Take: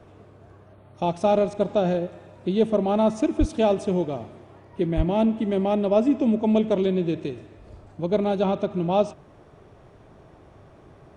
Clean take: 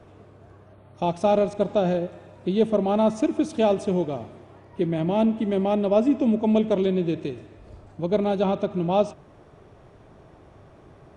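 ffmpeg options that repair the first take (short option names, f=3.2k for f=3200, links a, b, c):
-filter_complex "[0:a]asplit=3[a][b][c];[a]afade=t=out:st=3.39:d=0.02[d];[b]highpass=f=140:w=0.5412,highpass=f=140:w=1.3066,afade=t=in:st=3.39:d=0.02,afade=t=out:st=3.51:d=0.02[e];[c]afade=t=in:st=3.51:d=0.02[f];[d][e][f]amix=inputs=3:normalize=0,asplit=3[g][h][i];[g]afade=t=out:st=4.96:d=0.02[j];[h]highpass=f=140:w=0.5412,highpass=f=140:w=1.3066,afade=t=in:st=4.96:d=0.02,afade=t=out:st=5.08:d=0.02[k];[i]afade=t=in:st=5.08:d=0.02[l];[j][k][l]amix=inputs=3:normalize=0"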